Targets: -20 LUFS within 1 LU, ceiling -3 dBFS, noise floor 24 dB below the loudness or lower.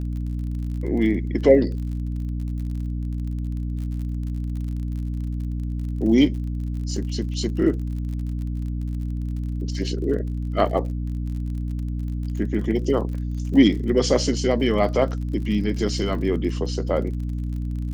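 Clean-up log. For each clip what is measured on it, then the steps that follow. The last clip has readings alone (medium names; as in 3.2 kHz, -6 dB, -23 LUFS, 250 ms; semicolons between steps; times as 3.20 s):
tick rate 42 per s; hum 60 Hz; highest harmonic 300 Hz; hum level -24 dBFS; loudness -24.5 LUFS; peak level -2.0 dBFS; loudness target -20.0 LUFS
-> de-click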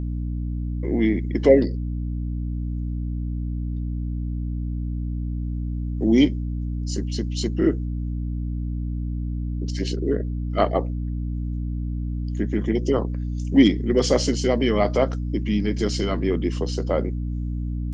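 tick rate 0.11 per s; hum 60 Hz; highest harmonic 300 Hz; hum level -24 dBFS
-> hum notches 60/120/180/240/300 Hz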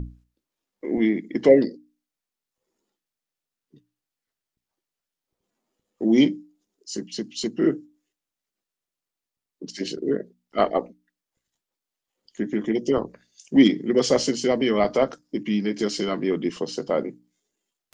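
hum not found; loudness -23.0 LUFS; peak level -3.0 dBFS; loudness target -20.0 LUFS
-> trim +3 dB; peak limiter -3 dBFS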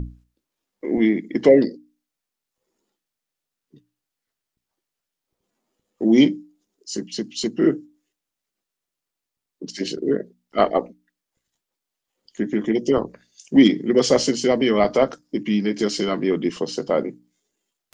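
loudness -20.5 LUFS; peak level -3.0 dBFS; noise floor -85 dBFS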